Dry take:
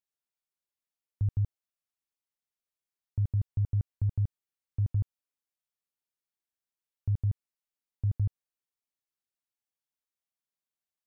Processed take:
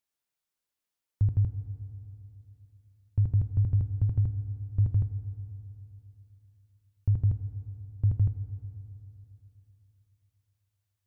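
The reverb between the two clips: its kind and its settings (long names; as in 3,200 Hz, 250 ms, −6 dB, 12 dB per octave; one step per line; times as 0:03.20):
feedback delay network reverb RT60 3.2 s, high-frequency decay 0.75×, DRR 9.5 dB
level +4.5 dB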